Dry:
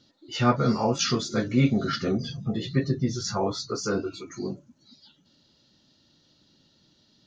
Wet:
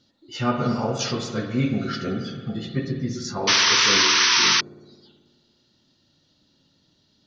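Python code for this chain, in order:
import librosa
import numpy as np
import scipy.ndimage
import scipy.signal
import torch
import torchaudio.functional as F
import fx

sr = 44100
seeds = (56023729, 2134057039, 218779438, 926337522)

y = fx.rev_spring(x, sr, rt60_s=1.7, pass_ms=(54,), chirp_ms=35, drr_db=4.5)
y = fx.spec_paint(y, sr, seeds[0], shape='noise', start_s=3.47, length_s=1.14, low_hz=890.0, high_hz=6200.0, level_db=-16.0)
y = y * 10.0 ** (-2.0 / 20.0)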